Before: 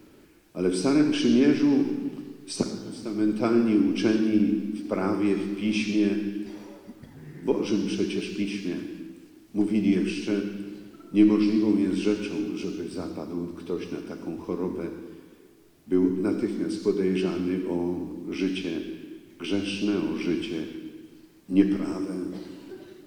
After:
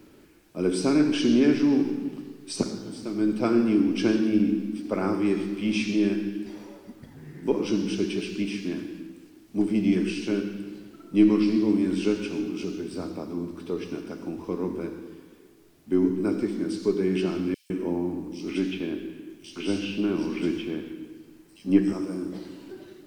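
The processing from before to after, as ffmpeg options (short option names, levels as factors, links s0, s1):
-filter_complex "[0:a]asettb=1/sr,asplit=3[s0][s1][s2];[s0]atrim=end=17.544[s3];[s1]atrim=start=17.54:end=21.93,asetpts=PTS-STARTPTS,afade=t=in:d=0.004:c=qsin,afade=t=out:st=4.386:d=0.004:c=qsin,acrossover=split=3700[s4][s5];[s4]adelay=160[s6];[s6][s5]amix=inputs=2:normalize=0,atrim=end_sample=193599[s7];[s2]atrim=start=21.926[s8];[s3][s7]acrossfade=d=0.004:c1=hsin:c2=qsin[s9];[s9][s8]acrossfade=d=0.004:c1=qsin:c2=hsin"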